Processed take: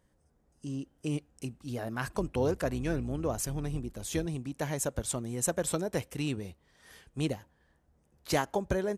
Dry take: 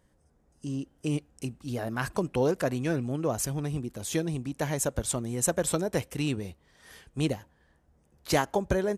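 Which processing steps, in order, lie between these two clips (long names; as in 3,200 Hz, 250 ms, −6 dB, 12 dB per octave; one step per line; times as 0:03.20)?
0:02.14–0:04.26: sub-octave generator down 2 octaves, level −5 dB
level −3.5 dB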